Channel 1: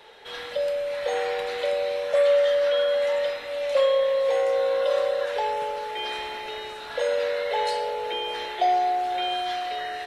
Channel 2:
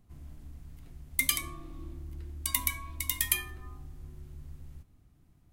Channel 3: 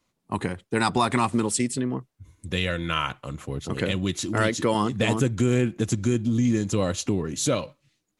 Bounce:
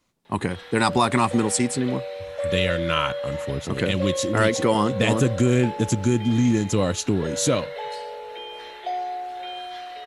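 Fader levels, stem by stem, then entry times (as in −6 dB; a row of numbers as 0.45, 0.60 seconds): −7.0 dB, muted, +2.5 dB; 0.25 s, muted, 0.00 s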